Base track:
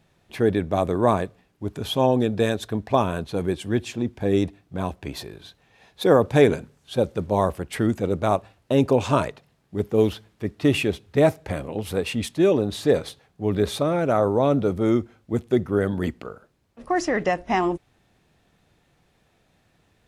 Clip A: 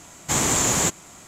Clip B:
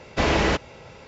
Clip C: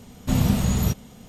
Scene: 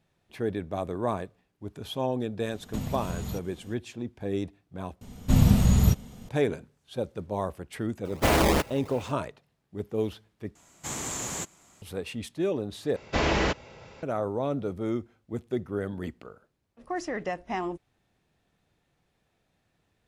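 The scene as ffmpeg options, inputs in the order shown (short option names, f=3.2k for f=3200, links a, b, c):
-filter_complex "[3:a]asplit=2[a][b];[2:a]asplit=2[c][d];[0:a]volume=-9.5dB[e];[a]acompressor=threshold=-31dB:ratio=2.5:attack=66:release=138:knee=1:detection=rms[f];[b]lowshelf=f=140:g=8[g];[c]acrusher=samples=18:mix=1:aa=0.000001:lfo=1:lforange=28.8:lforate=2.9[h];[e]asplit=4[i][j][k][l];[i]atrim=end=5.014[m];[g]atrim=end=1.28,asetpts=PTS-STARTPTS,volume=-3dB[n];[j]atrim=start=6.286:end=10.554[o];[1:a]atrim=end=1.27,asetpts=PTS-STARTPTS,volume=-13dB[p];[k]atrim=start=11.816:end=12.964[q];[d]atrim=end=1.07,asetpts=PTS-STARTPTS,volume=-4dB[r];[l]atrim=start=14.026[s];[f]atrim=end=1.28,asetpts=PTS-STARTPTS,volume=-6dB,afade=t=in:d=0.004:c=hsin,afade=t=out:st=1.276:d=0.004:c=hsin,adelay=2460[t];[h]atrim=end=1.07,asetpts=PTS-STARTPTS,volume=-1.5dB,afade=t=in:d=0.004:c=hsin,afade=t=out:st=1.066:d=0.004:c=hsin,adelay=8050[u];[m][n]acrossfade=d=0.004:c1=hsin:c2=hsin[v];[v][o]acrossfade=d=0.004:c1=hsin:c2=hsin[w];[w][p]acrossfade=d=0.004:c1=hsin:c2=hsin[x];[x][q]acrossfade=d=0.004:c1=hsin:c2=hsin[y];[y][r]acrossfade=d=0.004:c1=hsin:c2=hsin[z];[z][s]acrossfade=d=0.004:c1=hsin:c2=hsin[aa];[aa][t][u]amix=inputs=3:normalize=0"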